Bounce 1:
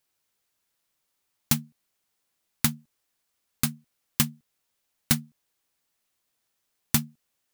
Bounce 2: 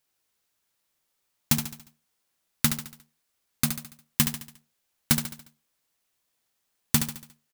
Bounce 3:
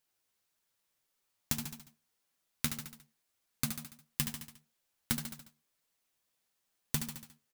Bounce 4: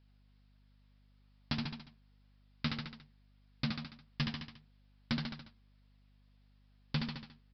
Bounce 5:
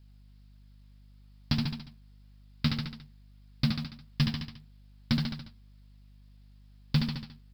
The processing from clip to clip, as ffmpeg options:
-filter_complex "[0:a]acrusher=bits=2:mode=log:mix=0:aa=0.000001,asplit=2[a][b];[b]aecho=0:1:71|142|213|284|355:0.398|0.183|0.0842|0.0388|0.0178[c];[a][c]amix=inputs=2:normalize=0"
-af "acompressor=threshold=-25dB:ratio=5,flanger=delay=3.8:depth=9.2:regen=45:speed=1.7:shape=triangular"
-af "aeval=exprs='val(0)+0.000316*(sin(2*PI*50*n/s)+sin(2*PI*2*50*n/s)/2+sin(2*PI*3*50*n/s)/3+sin(2*PI*4*50*n/s)/4+sin(2*PI*5*50*n/s)/5)':c=same,aresample=11025,asoftclip=type=tanh:threshold=-31dB,aresample=44100,volume=5.5dB"
-af "bass=f=250:g=9,treble=f=4k:g=8,acrusher=bits=8:mode=log:mix=0:aa=0.000001,volume=2dB"

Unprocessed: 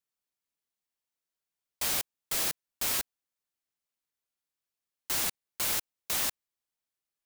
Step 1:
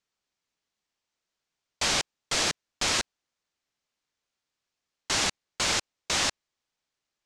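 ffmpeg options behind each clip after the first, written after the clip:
-af "lowpass=f=7k:w=0.5412,lowpass=f=7k:w=1.3066,volume=8.5dB"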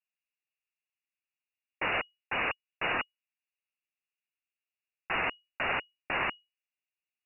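-af "adynamicsmooth=sensitivity=7:basefreq=660,lowpass=f=2.5k:t=q:w=0.5098,lowpass=f=2.5k:t=q:w=0.6013,lowpass=f=2.5k:t=q:w=0.9,lowpass=f=2.5k:t=q:w=2.563,afreqshift=-2900"

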